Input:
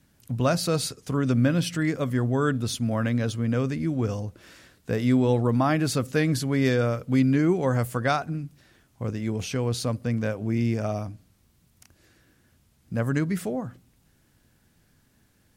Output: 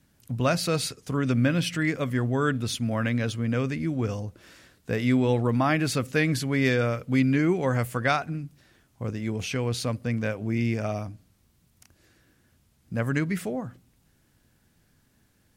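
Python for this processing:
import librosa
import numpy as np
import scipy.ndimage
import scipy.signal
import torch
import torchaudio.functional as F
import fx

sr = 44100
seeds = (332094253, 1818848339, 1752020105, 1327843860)

y = fx.dynamic_eq(x, sr, hz=2300.0, q=1.3, threshold_db=-46.0, ratio=4.0, max_db=7)
y = y * 10.0 ** (-1.5 / 20.0)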